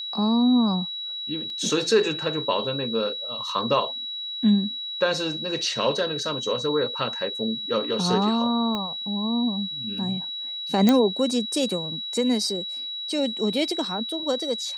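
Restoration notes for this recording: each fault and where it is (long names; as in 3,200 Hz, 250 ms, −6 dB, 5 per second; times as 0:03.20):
whistle 3,900 Hz −30 dBFS
0:01.50: drop-out 2.4 ms
0:08.75: click −16 dBFS
0:10.89: click −6 dBFS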